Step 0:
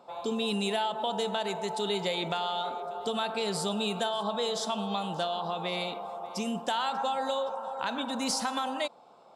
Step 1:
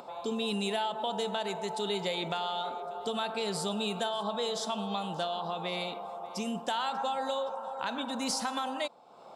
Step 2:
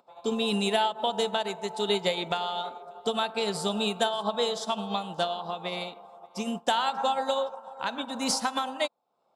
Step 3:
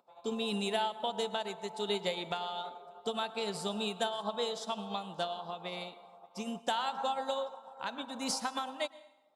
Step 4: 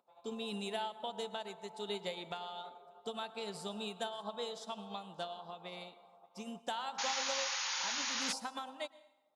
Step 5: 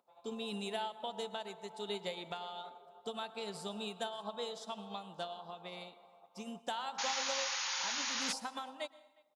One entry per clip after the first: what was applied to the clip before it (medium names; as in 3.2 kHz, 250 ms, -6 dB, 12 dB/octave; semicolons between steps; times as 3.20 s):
upward compressor, threshold -38 dBFS; trim -2 dB
upward expansion 2.5:1, over -49 dBFS; trim +8.5 dB
plate-style reverb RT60 1 s, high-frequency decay 0.75×, pre-delay 95 ms, DRR 18.5 dB; trim -7 dB
painted sound noise, 6.98–8.33 s, 760–7000 Hz -31 dBFS; trim -6.5 dB
speakerphone echo 360 ms, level -26 dB